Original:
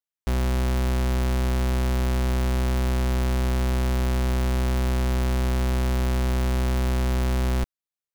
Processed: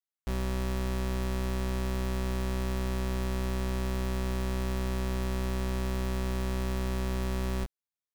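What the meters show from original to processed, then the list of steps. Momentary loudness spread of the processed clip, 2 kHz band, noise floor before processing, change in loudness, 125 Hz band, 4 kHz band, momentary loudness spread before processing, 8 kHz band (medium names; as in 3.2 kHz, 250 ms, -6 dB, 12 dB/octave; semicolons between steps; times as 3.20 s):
0 LU, -6.5 dB, under -85 dBFS, -7.5 dB, -8.5 dB, -6.5 dB, 0 LU, -6.5 dB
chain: doubling 21 ms -3.5 dB; trim -8 dB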